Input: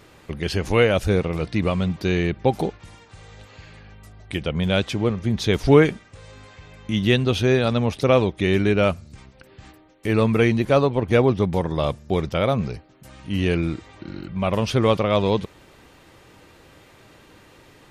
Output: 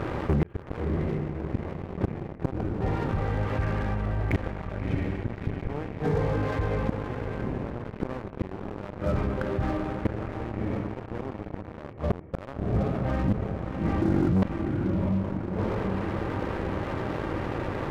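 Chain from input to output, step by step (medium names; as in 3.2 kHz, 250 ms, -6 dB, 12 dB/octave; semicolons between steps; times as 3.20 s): single-diode clipper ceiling -17 dBFS; Gaussian low-pass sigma 5.2 samples; two-slope reverb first 0.74 s, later 2.5 s, DRR 9 dB; inverted gate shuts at -18 dBFS, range -40 dB; echo that smears into a reverb 656 ms, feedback 41%, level -10 dB; waveshaping leveller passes 3; level flattener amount 50%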